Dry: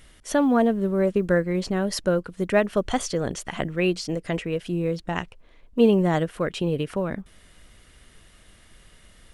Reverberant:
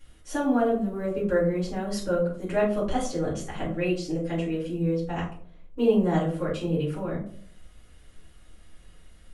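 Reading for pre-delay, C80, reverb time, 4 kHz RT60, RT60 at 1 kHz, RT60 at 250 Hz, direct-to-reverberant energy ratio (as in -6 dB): 4 ms, 10.0 dB, 0.55 s, 0.25 s, 0.45 s, 0.70 s, -7.0 dB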